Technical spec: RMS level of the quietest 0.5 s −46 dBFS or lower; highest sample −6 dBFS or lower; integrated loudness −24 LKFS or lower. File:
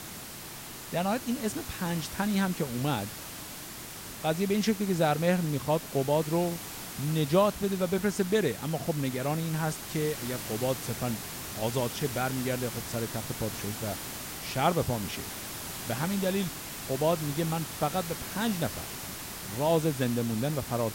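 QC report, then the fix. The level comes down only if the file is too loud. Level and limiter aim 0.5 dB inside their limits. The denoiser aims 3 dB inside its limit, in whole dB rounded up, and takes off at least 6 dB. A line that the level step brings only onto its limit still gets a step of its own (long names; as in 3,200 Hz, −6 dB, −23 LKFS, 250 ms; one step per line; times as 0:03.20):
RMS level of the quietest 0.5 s −43 dBFS: out of spec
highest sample −11.5 dBFS: in spec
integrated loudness −30.5 LKFS: in spec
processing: broadband denoise 6 dB, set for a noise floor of −43 dBFS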